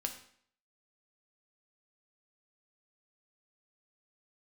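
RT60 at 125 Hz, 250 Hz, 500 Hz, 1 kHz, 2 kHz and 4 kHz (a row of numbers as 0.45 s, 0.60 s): 0.55 s, 0.60 s, 0.60 s, 0.60 s, 0.60 s, 0.55 s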